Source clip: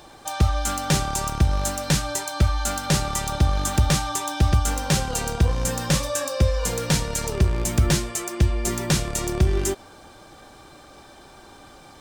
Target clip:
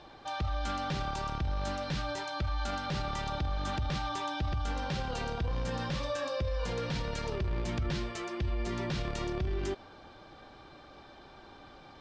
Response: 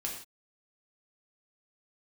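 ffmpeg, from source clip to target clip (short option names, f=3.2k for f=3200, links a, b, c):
-af "lowpass=f=4.6k:w=0.5412,lowpass=f=4.6k:w=1.3066,alimiter=limit=-20dB:level=0:latency=1:release=25,volume=-5.5dB"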